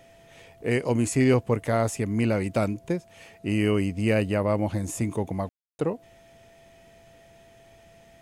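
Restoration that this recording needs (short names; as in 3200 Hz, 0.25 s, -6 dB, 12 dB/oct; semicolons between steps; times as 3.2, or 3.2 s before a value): notch 670 Hz, Q 30; room tone fill 5.49–5.79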